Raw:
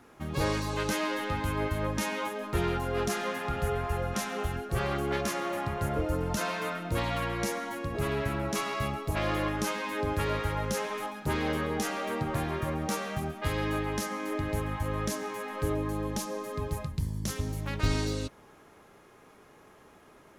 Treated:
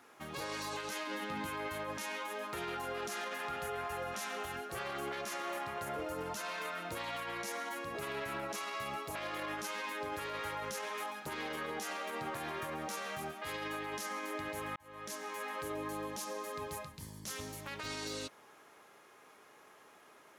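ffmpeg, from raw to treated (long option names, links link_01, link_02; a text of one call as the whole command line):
ffmpeg -i in.wav -filter_complex "[0:a]asettb=1/sr,asplit=3[link_01][link_02][link_03];[link_01]atrim=end=1.074[link_04];[link_02]atrim=start=1.07:end=1.47,asetpts=PTS-STARTPTS,afade=type=in:duration=0.004:curve=qsin,afade=type=out:start_time=0.396:duration=0.004:curve=qsin,equalizer=frequency=210:width=1.4:gain=15[link_05];[link_03]atrim=start=1.466[link_06];[link_04][link_05]acrossfade=duration=0.004:curve1=hsin:curve2=qsin[link_07];[link_07][link_06]acrossfade=duration=0.004:curve1=qsin:curve2=hsin,asplit=2[link_08][link_09];[link_08]atrim=end=14.76,asetpts=PTS-STARTPTS,afade=type=out:start_time=14.756:duration=0.004:curve=hsin[link_10];[link_09]atrim=start=14.76,asetpts=PTS-STARTPTS,afade=type=in:duration=0.71[link_11];[link_10][link_11]concat=n=2:v=0:a=1,highpass=frequency=780:poles=1,alimiter=level_in=7dB:limit=-24dB:level=0:latency=1:release=35,volume=-7dB" out.wav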